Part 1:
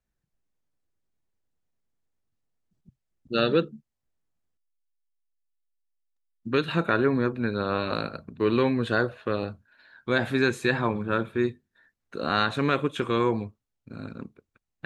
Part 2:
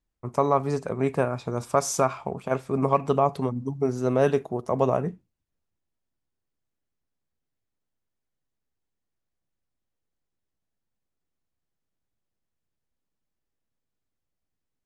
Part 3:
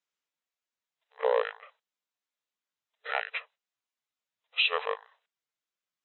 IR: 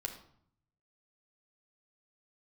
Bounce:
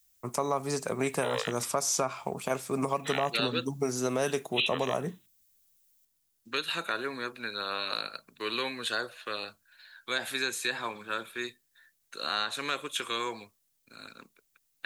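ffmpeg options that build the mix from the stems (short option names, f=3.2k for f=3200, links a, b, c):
-filter_complex "[0:a]highpass=f=1.2k:p=1,volume=-4dB[a];[1:a]alimiter=limit=-14dB:level=0:latency=1:release=489,volume=-1.5dB[b];[2:a]crystalizer=i=3.5:c=0,volume=-8.5dB[c];[a][b][c]amix=inputs=3:normalize=0,acrossover=split=130|1000|5100[d][e][f][g];[d]acompressor=threshold=-57dB:ratio=4[h];[e]acompressor=threshold=-27dB:ratio=4[i];[f]acompressor=threshold=-39dB:ratio=4[j];[g]acompressor=threshold=-54dB:ratio=4[k];[h][i][j][k]amix=inputs=4:normalize=0,crystalizer=i=6.5:c=0"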